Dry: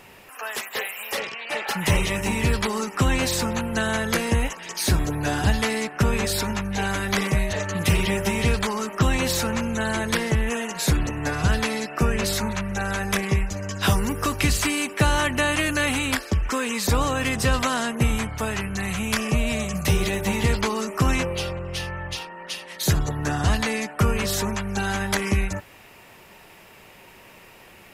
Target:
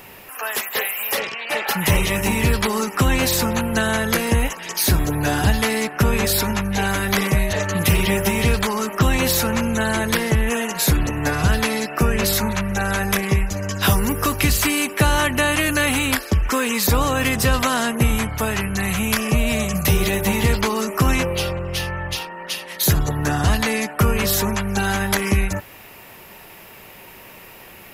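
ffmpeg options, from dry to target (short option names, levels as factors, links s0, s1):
-filter_complex "[0:a]aexciter=amount=3.2:drive=4.5:freq=11000,asplit=2[s0][s1];[s1]alimiter=limit=0.178:level=0:latency=1:release=279,volume=0.794[s2];[s0][s2]amix=inputs=2:normalize=0"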